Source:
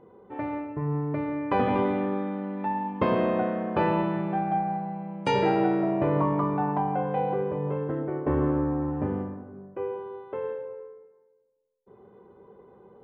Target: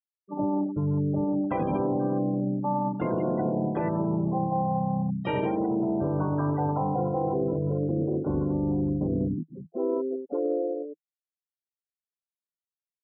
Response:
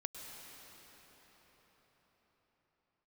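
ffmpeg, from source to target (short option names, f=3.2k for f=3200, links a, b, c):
-filter_complex "[0:a]bandreject=f=1.7k:w=8.9,afftfilt=real='re*gte(hypot(re,im),0.0631)':imag='im*gte(hypot(re,im),0.0631)':win_size=1024:overlap=0.75,highshelf=f=2.3k:g=-2.5,asplit=3[a][b][c];[b]asetrate=29433,aresample=44100,atempo=1.49831,volume=-6dB[d];[c]asetrate=58866,aresample=44100,atempo=0.749154,volume=-12dB[e];[a][d][e]amix=inputs=3:normalize=0,alimiter=limit=-16.5dB:level=0:latency=1:release=84,equalizer=f=160:t=o:w=0.33:g=7,equalizer=f=315:t=o:w=0.33:g=4,equalizer=f=1.25k:t=o:w=0.33:g=-6,equalizer=f=2k:t=o:w=0.33:g=10,areverse,acompressor=threshold=-31dB:ratio=12,areverse,volume=8dB"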